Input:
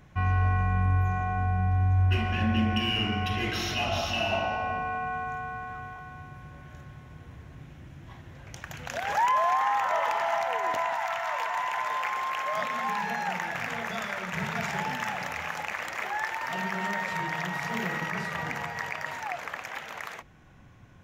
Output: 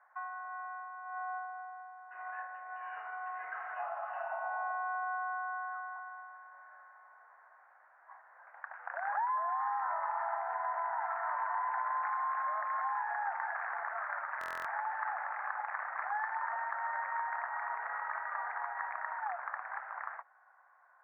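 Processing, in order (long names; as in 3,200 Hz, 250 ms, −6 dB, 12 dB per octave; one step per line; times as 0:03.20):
Butterworth low-pass 1,700 Hz 48 dB per octave
downward compressor 10 to 1, threshold −30 dBFS, peak gain reduction 10.5 dB
Butterworth high-pass 740 Hz 36 dB per octave
buffer that repeats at 0:14.39, samples 1,024, times 10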